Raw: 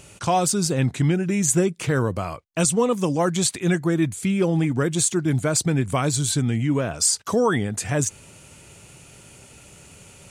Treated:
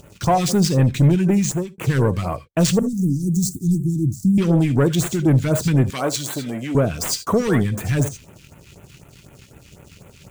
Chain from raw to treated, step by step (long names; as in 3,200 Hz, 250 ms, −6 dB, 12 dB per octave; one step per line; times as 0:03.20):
running median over 5 samples
leveller curve on the samples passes 2
0:02.79–0:04.38: inverse Chebyshev band-stop filter 590–2,800 Hz, stop band 50 dB
reverb whose tail is shaped and stops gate 100 ms rising, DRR 12 dB
all-pass phaser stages 2, 4 Hz, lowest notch 580–4,800 Hz
0:01.31–0:01.78: fade out
0:05.90–0:06.75: high-pass filter 340 Hz 12 dB per octave